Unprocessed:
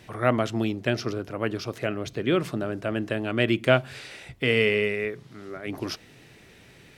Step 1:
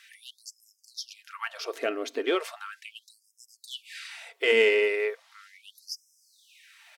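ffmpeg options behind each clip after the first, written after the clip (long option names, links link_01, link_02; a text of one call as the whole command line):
ffmpeg -i in.wav -af "aeval=exprs='0.708*(cos(1*acos(clip(val(0)/0.708,-1,1)))-cos(1*PI/2))+0.02*(cos(8*acos(clip(val(0)/0.708,-1,1)))-cos(8*PI/2))':channel_layout=same,aecho=1:1:4.4:0.38,afftfilt=real='re*gte(b*sr/1024,220*pow(5100/220,0.5+0.5*sin(2*PI*0.37*pts/sr)))':imag='im*gte(b*sr/1024,220*pow(5100/220,0.5+0.5*sin(2*PI*0.37*pts/sr)))':win_size=1024:overlap=0.75" out.wav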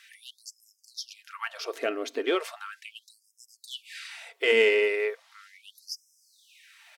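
ffmpeg -i in.wav -af anull out.wav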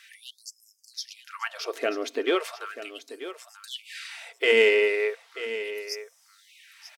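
ffmpeg -i in.wav -af "aecho=1:1:937:0.224,volume=2dB" out.wav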